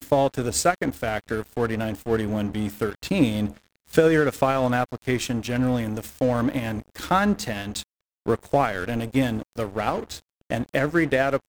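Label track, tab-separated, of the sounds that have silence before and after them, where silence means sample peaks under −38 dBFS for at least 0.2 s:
3.870000	7.830000	sound
8.260000	10.190000	sound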